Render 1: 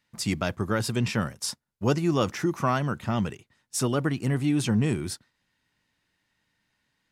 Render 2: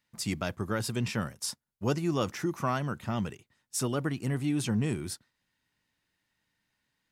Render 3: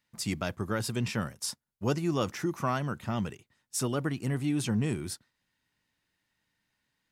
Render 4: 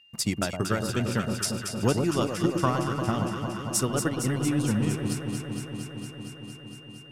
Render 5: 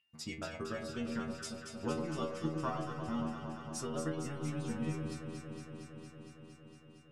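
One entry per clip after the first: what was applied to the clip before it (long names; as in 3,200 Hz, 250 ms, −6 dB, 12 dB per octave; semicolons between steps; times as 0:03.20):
high-shelf EQ 10,000 Hz +6 dB; level −5 dB
no processing that can be heard
transient designer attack +8 dB, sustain −8 dB; steady tone 2,800 Hz −55 dBFS; delay that swaps between a low-pass and a high-pass 115 ms, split 1,100 Hz, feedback 89%, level −5.5 dB
high-frequency loss of the air 67 metres; stiff-string resonator 77 Hz, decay 0.49 s, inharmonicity 0.002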